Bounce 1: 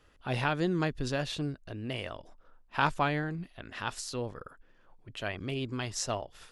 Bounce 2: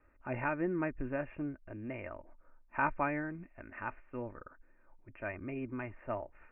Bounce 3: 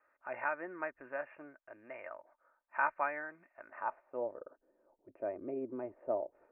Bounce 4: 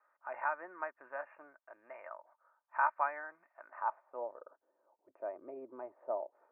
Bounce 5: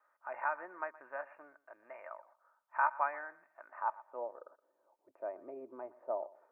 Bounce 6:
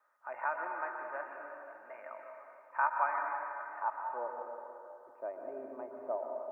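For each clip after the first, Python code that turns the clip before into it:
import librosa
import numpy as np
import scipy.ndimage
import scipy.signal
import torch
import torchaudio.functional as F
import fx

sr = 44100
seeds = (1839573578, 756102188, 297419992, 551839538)

y1 = scipy.signal.sosfilt(scipy.signal.butter(16, 2500.0, 'lowpass', fs=sr, output='sos'), x)
y1 = y1 + 0.47 * np.pad(y1, (int(3.3 * sr / 1000.0), 0))[:len(y1)]
y1 = y1 * 10.0 ** (-5.0 / 20.0)
y2 = fx.peak_eq(y1, sr, hz=620.0, db=11.5, octaves=1.6)
y2 = fx.filter_sweep_bandpass(y2, sr, from_hz=1600.0, to_hz=400.0, start_s=3.46, end_s=4.58, q=1.5)
y2 = y2 * 10.0 ** (-2.0 / 20.0)
y3 = fx.bandpass_q(y2, sr, hz=1000.0, q=1.7)
y3 = y3 * 10.0 ** (3.5 / 20.0)
y4 = fx.echo_feedback(y3, sr, ms=120, feedback_pct=22, wet_db=-19.5)
y5 = fx.rev_plate(y4, sr, seeds[0], rt60_s=2.8, hf_ratio=0.75, predelay_ms=110, drr_db=2.0)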